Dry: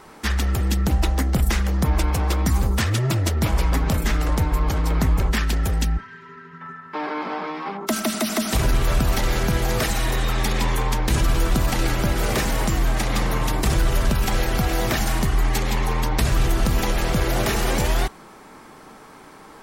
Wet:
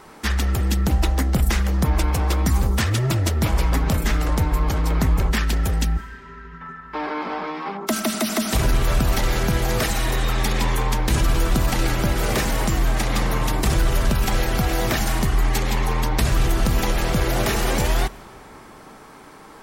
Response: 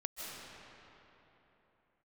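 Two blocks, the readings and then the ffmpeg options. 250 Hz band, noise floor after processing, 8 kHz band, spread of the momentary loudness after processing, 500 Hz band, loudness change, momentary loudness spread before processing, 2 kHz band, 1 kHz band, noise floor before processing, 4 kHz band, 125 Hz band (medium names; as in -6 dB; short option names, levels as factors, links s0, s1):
+0.5 dB, -44 dBFS, +0.5 dB, 5 LU, +0.5 dB, +0.5 dB, 5 LU, +0.5 dB, +0.5 dB, -45 dBFS, +0.5 dB, +0.5 dB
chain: -filter_complex "[0:a]asplit=2[s0][s1];[1:a]atrim=start_sample=2205,highshelf=f=11000:g=11.5[s2];[s1][s2]afir=irnorm=-1:irlink=0,volume=0.0891[s3];[s0][s3]amix=inputs=2:normalize=0"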